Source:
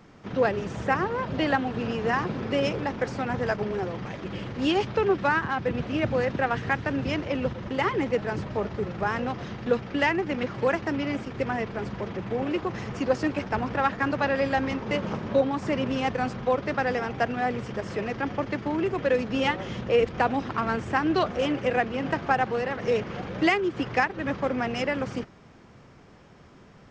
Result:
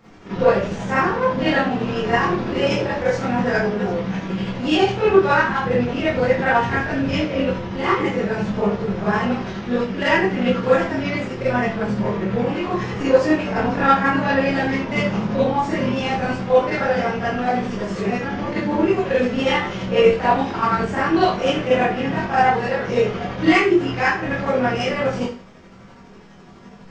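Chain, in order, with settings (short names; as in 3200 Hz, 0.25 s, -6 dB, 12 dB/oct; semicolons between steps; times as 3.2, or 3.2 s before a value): chopper 12 Hz, depth 60%, duty 40%; chorus voices 4, 0.1 Hz, delay 23 ms, depth 2.8 ms; Schroeder reverb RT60 0.38 s, combs from 33 ms, DRR -10 dB; gain +3 dB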